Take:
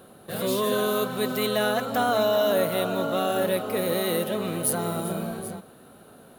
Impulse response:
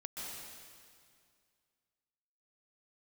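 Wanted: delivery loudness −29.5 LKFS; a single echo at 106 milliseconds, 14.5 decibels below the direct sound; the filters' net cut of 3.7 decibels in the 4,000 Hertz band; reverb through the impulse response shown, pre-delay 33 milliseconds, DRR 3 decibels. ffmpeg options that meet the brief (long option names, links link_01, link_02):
-filter_complex "[0:a]equalizer=frequency=4000:width_type=o:gain=-4.5,aecho=1:1:106:0.188,asplit=2[link_01][link_02];[1:a]atrim=start_sample=2205,adelay=33[link_03];[link_02][link_03]afir=irnorm=-1:irlink=0,volume=-2.5dB[link_04];[link_01][link_04]amix=inputs=2:normalize=0,volume=-6dB"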